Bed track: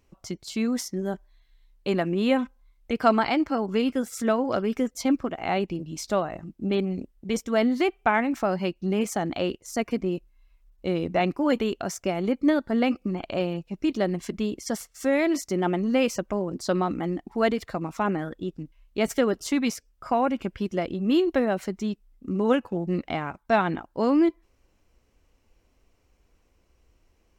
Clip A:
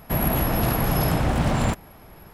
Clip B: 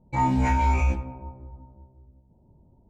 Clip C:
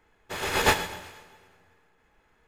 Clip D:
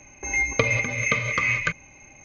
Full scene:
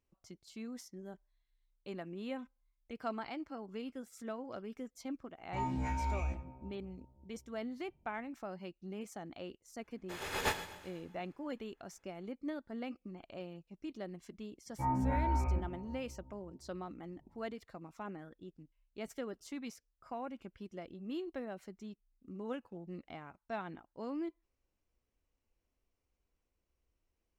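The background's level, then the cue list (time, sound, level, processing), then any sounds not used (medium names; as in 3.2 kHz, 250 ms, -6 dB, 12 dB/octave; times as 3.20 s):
bed track -19 dB
5.40 s: add B -14 dB
9.79 s: add C -12 dB
14.66 s: add B -10.5 dB + low-pass 1.7 kHz 24 dB/octave
not used: A, D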